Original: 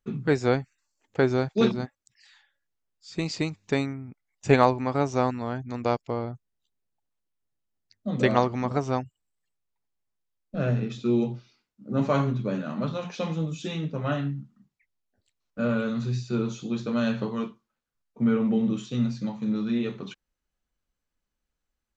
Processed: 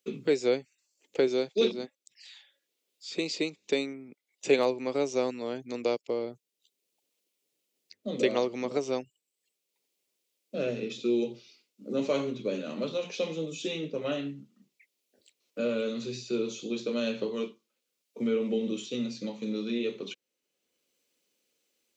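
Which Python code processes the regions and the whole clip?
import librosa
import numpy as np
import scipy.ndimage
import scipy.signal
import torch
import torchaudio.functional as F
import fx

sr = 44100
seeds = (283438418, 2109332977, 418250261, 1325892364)

y = fx.chain(x, sr, fx.highpass(hz=140.0, slope=12),
    fx.peak_eq(hz=3600.0, db=3.5, octaves=0.44), at=(1.27, 4.59))
y = scipy.signal.sosfilt(scipy.signal.cheby1(2, 1.0, 450.0, 'highpass', fs=sr, output='sos'), y)
y = fx.band_shelf(y, sr, hz=1100.0, db=-13.0, octaves=1.7)
y = fx.band_squash(y, sr, depth_pct=40)
y = y * 10.0 ** (3.0 / 20.0)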